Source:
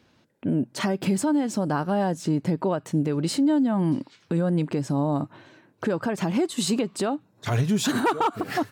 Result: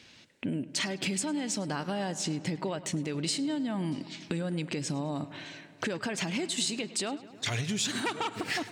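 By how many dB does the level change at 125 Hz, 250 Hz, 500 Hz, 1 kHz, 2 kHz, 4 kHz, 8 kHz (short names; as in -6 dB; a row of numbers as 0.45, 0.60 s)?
-9.0, -9.5, -9.5, -9.5, -1.5, +1.5, +1.0 dB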